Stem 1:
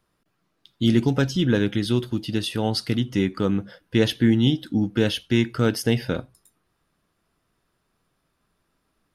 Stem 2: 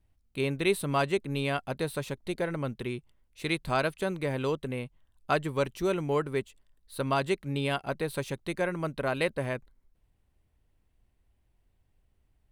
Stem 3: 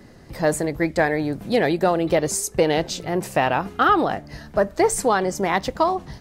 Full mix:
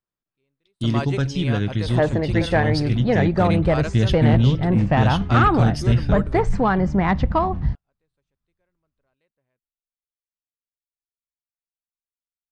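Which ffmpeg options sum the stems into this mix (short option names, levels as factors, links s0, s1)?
-filter_complex "[0:a]agate=range=0.112:threshold=0.00282:ratio=16:detection=peak,asubboost=boost=7.5:cutoff=140,volume=0.708,asplit=2[s0][s1];[1:a]volume=0.891[s2];[2:a]lowpass=2200,asubboost=boost=9.5:cutoff=140,adelay=1550,volume=1.26[s3];[s1]apad=whole_len=551755[s4];[s2][s4]sidechaingate=range=0.00631:threshold=0.002:ratio=16:detection=peak[s5];[s0][s5][s3]amix=inputs=3:normalize=0,lowpass=f=8300:w=0.5412,lowpass=f=8300:w=1.3066,asoftclip=type=tanh:threshold=0.447"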